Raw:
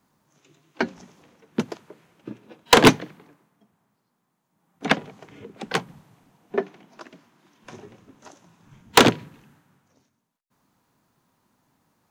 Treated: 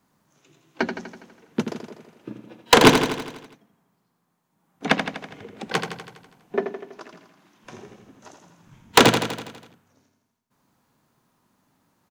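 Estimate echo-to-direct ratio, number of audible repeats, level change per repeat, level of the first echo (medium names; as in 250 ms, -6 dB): -5.5 dB, 7, -4.5 dB, -7.5 dB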